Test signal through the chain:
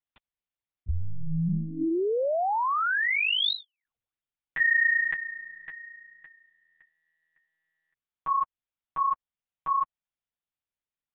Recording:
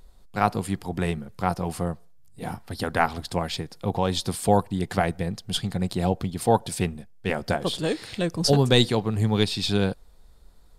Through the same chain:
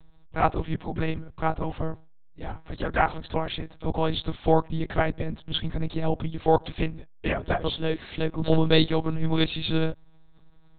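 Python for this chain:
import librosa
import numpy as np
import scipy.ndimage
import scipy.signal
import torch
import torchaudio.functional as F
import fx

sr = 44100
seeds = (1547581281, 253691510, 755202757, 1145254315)

y = fx.lpc_monotone(x, sr, seeds[0], pitch_hz=160.0, order=10)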